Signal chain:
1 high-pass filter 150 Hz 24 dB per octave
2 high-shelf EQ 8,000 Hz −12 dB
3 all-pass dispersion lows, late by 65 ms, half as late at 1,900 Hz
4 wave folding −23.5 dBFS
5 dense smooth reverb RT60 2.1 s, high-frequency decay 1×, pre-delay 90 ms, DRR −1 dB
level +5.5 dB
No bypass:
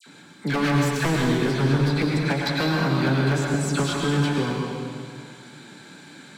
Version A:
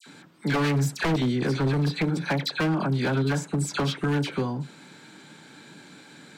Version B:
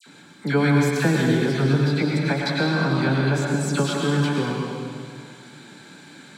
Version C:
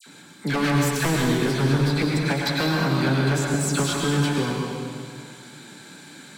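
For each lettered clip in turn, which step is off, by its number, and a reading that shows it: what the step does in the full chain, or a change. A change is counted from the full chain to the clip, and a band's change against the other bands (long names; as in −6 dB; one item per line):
5, change in momentary loudness spread −8 LU
4, distortion level −8 dB
2, 8 kHz band +5.0 dB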